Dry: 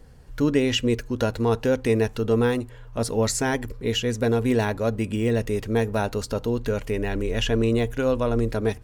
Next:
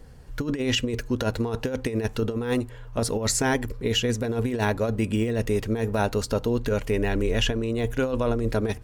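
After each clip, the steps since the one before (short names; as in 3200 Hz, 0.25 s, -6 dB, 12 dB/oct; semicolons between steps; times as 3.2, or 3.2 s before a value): negative-ratio compressor -23 dBFS, ratio -0.5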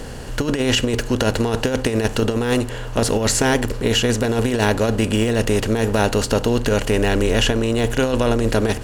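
per-bin compression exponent 0.6; gain +3.5 dB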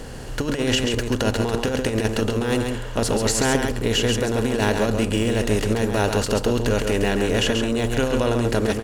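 echo 0.136 s -5.5 dB; gain -3.5 dB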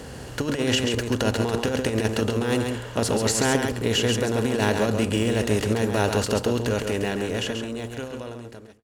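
ending faded out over 2.58 s; HPF 53 Hz 24 dB/oct; gain -1.5 dB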